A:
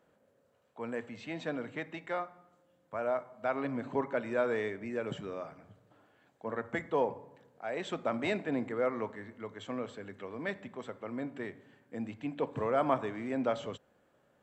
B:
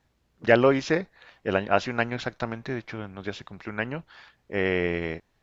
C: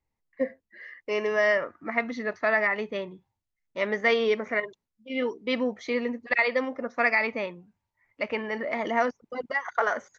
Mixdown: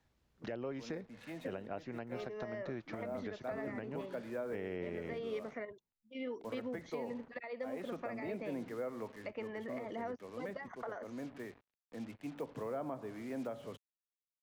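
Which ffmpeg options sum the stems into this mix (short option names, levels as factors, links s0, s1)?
-filter_complex "[0:a]lowpass=3000,acrusher=bits=7:mix=0:aa=0.5,volume=0.501[s0];[1:a]volume=0.501[s1];[2:a]acompressor=threshold=0.0398:ratio=1.5,adelay=1050,volume=0.335[s2];[s0][s1][s2]amix=inputs=3:normalize=0,acrossover=split=140|710[s3][s4][s5];[s3]acompressor=threshold=0.00158:ratio=4[s6];[s4]acompressor=threshold=0.0141:ratio=4[s7];[s5]acompressor=threshold=0.00316:ratio=4[s8];[s6][s7][s8]amix=inputs=3:normalize=0,alimiter=level_in=2:limit=0.0631:level=0:latency=1:release=221,volume=0.501"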